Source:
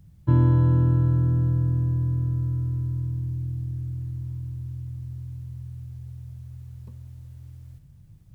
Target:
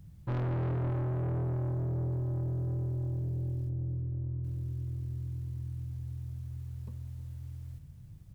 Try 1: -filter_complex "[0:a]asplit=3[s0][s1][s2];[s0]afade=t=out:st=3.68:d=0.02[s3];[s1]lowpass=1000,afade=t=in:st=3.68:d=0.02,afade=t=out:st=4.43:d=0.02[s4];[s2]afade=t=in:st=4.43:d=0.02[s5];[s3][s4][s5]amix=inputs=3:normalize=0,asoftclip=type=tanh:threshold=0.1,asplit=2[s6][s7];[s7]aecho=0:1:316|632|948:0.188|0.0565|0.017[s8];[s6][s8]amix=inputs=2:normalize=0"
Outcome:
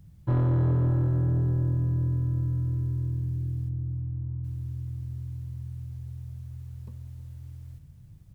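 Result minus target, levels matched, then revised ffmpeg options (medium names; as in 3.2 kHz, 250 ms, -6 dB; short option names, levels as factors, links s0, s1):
saturation: distortion -7 dB
-filter_complex "[0:a]asplit=3[s0][s1][s2];[s0]afade=t=out:st=3.68:d=0.02[s3];[s1]lowpass=1000,afade=t=in:st=3.68:d=0.02,afade=t=out:st=4.43:d=0.02[s4];[s2]afade=t=in:st=4.43:d=0.02[s5];[s3][s4][s5]amix=inputs=3:normalize=0,asoftclip=type=tanh:threshold=0.0316,asplit=2[s6][s7];[s7]aecho=0:1:316|632|948:0.188|0.0565|0.017[s8];[s6][s8]amix=inputs=2:normalize=0"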